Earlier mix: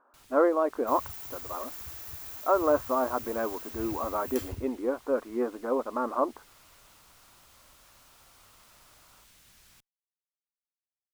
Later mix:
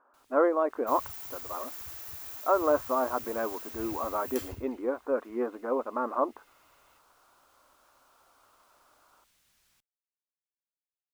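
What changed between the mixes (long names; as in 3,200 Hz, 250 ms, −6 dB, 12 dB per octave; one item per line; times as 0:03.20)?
first sound −10.5 dB
master: add low-shelf EQ 240 Hz −5.5 dB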